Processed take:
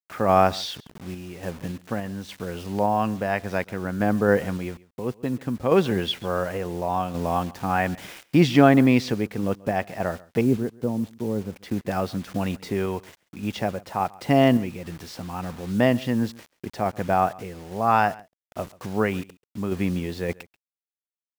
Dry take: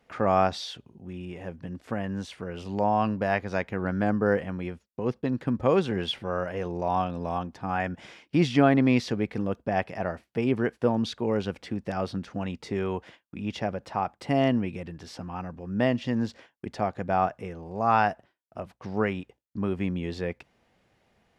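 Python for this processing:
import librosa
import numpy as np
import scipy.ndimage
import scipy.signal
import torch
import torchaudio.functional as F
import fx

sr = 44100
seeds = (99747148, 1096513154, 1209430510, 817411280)

y = fx.curve_eq(x, sr, hz=(230.0, 910.0, 3000.0, 4600.0), db=(0, -9, -20, -29), at=(10.41, 11.53))
y = fx.quant_dither(y, sr, seeds[0], bits=8, dither='none')
y = fx.tremolo_random(y, sr, seeds[1], hz=3.5, depth_pct=55)
y = y + 10.0 ** (-22.5 / 20.0) * np.pad(y, (int(136 * sr / 1000.0), 0))[:len(y)]
y = y * 10.0 ** (6.0 / 20.0)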